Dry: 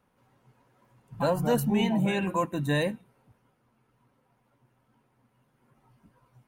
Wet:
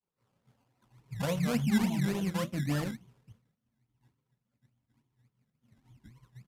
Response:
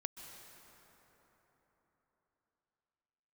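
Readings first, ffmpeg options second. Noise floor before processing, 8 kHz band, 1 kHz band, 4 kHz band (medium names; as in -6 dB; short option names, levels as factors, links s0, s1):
-71 dBFS, -1.0 dB, -9.5 dB, -4.5 dB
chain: -filter_complex "[0:a]afftfilt=real='re*pow(10,8/40*sin(2*PI*(0.67*log(max(b,1)*sr/1024/100)/log(2)-(0.97)*(pts-256)/sr)))':imag='im*pow(10,8/40*sin(2*PI*(0.67*log(max(b,1)*sr/1024/100)/log(2)-(0.97)*(pts-256)/sr)))':win_size=1024:overlap=0.75,agate=range=0.0224:threshold=0.00126:ratio=3:detection=peak,highpass=f=40:p=1,bandreject=f=1600:w=8.9,acrossover=split=7800[s0][s1];[s1]acompressor=threshold=0.00224:ratio=4:attack=1:release=60[s2];[s0][s2]amix=inputs=2:normalize=0,asubboost=boost=5.5:cutoff=230,asplit=2[s3][s4];[s4]acompressor=threshold=0.0224:ratio=16,volume=1[s5];[s3][s5]amix=inputs=2:normalize=0,flanger=delay=3.7:depth=9.4:regen=66:speed=1.1:shape=triangular,acrusher=samples=19:mix=1:aa=0.000001:lfo=1:lforange=11.4:lforate=3.5,aresample=32000,aresample=44100,volume=0.531"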